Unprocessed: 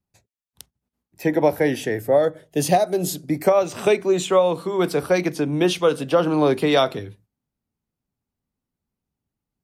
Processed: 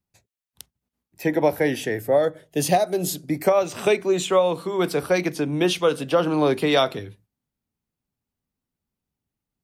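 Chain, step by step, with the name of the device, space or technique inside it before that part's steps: presence and air boost (bell 2700 Hz +2.5 dB 1.9 oct; high shelf 10000 Hz +4 dB); gain -2 dB

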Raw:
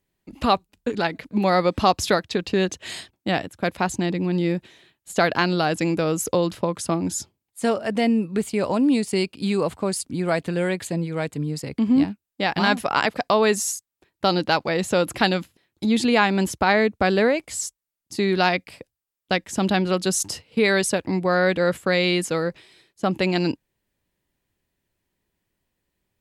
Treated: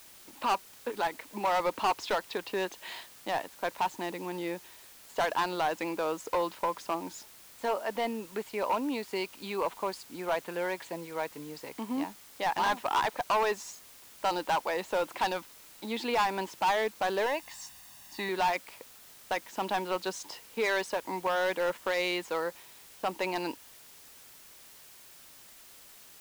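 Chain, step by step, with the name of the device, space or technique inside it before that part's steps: drive-through speaker (BPF 430–3800 Hz; bell 940 Hz +11 dB 0.39 oct; hard clip -16.5 dBFS, distortion -8 dB; white noise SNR 20 dB); 17.26–18.29 comb 1.1 ms, depth 64%; gain -6.5 dB

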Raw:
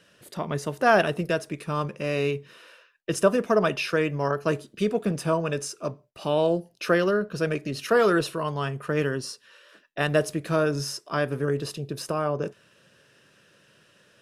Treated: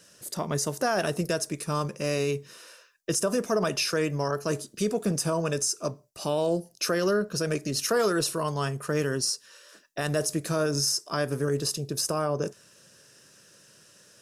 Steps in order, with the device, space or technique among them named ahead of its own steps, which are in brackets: over-bright horn tweeter (resonant high shelf 4300 Hz +10.5 dB, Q 1.5; limiter -16.5 dBFS, peak gain reduction 9.5 dB)

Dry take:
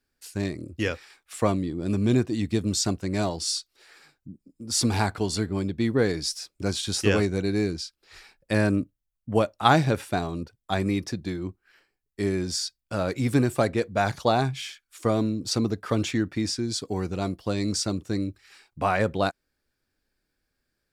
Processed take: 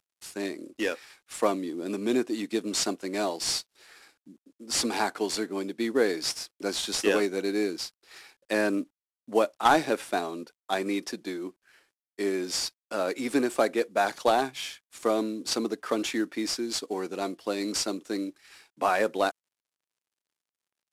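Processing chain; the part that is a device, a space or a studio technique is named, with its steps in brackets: early wireless headset (HPF 270 Hz 24 dB/oct; CVSD 64 kbps)

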